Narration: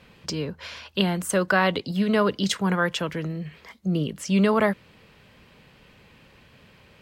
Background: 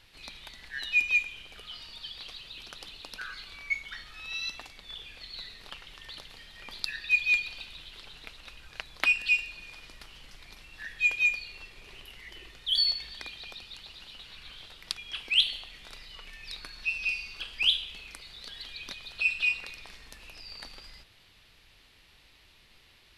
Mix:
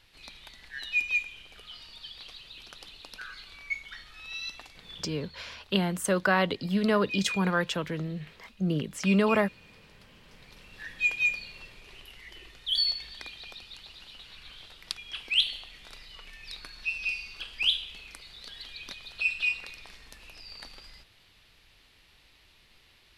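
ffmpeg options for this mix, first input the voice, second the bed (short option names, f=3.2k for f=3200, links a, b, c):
-filter_complex "[0:a]adelay=4750,volume=-3.5dB[a];[1:a]volume=7.5dB,afade=t=out:st=4.89:d=0.5:silence=0.375837,afade=t=in:st=10.17:d=0.65:silence=0.316228[b];[a][b]amix=inputs=2:normalize=0"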